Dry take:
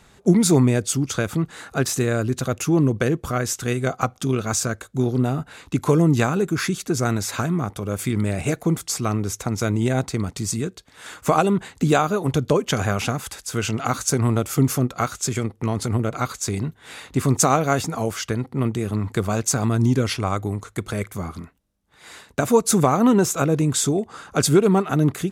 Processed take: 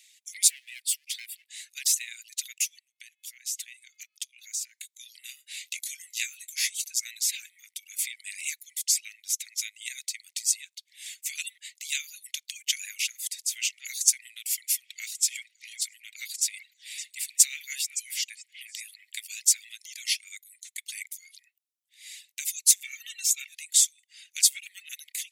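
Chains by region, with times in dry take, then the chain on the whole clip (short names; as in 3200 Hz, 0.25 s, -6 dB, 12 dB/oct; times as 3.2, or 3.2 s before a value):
0.48–1.5 bell 6400 Hz -15 dB 0.3 oct + hard clip -22.5 dBFS
2.79–4.75 de-hum 427.1 Hz, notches 12 + compressor 12:1, threshold -29 dBFS
5.29–6.94 doubler 22 ms -8 dB + mismatched tape noise reduction encoder only
14.34–19.73 notch 6400 Hz, Q 11 + delay with a stepping band-pass 0.189 s, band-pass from 870 Hz, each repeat 1.4 oct, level -6 dB
22.84–23.53 high shelf 5300 Hz -5 dB + comb 2.2 ms, depth 75%
whole clip: steep high-pass 2000 Hz 72 dB/oct; reverb removal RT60 0.88 s; high shelf 4300 Hz +7 dB; gain -2 dB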